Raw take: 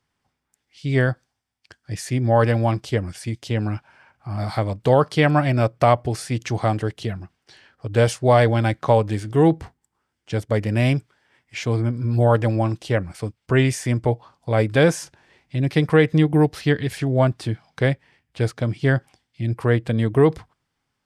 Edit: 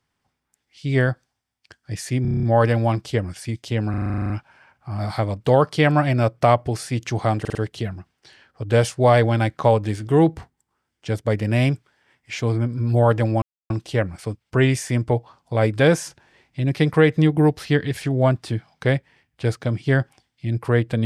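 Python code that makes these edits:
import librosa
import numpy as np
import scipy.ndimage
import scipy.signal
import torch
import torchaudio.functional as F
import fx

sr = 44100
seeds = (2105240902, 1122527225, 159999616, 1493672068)

y = fx.edit(x, sr, fx.stutter(start_s=2.22, slice_s=0.03, count=8),
    fx.stutter(start_s=3.69, slice_s=0.04, count=11),
    fx.stutter(start_s=6.79, slice_s=0.05, count=4),
    fx.insert_silence(at_s=12.66, length_s=0.28), tone=tone)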